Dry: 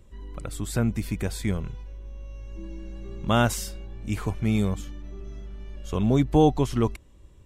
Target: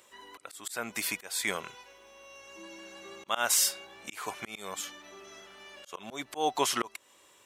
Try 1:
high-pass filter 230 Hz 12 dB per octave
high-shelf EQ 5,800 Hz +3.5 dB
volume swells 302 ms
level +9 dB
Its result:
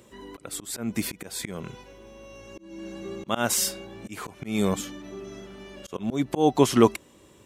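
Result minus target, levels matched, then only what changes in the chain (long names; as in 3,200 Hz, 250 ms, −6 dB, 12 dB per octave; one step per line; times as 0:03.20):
250 Hz band +12.0 dB
change: high-pass filter 840 Hz 12 dB per octave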